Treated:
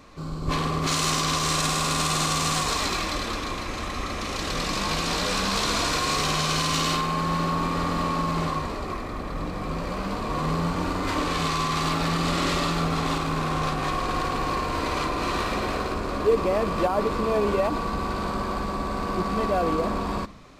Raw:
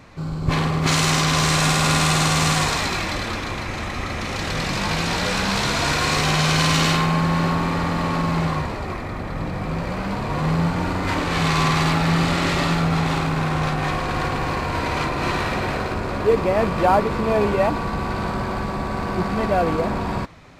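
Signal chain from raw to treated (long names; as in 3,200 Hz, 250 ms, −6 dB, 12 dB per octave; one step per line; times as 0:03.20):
parametric band 1,100 Hz +13 dB 0.36 octaves
convolution reverb RT60 0.65 s, pre-delay 7 ms, DRR 16 dB
brickwall limiter −8.5 dBFS, peak gain reduction 8.5 dB
graphic EQ with 10 bands 125 Hz −12 dB, 1,000 Hz −10 dB, 2,000 Hz −5 dB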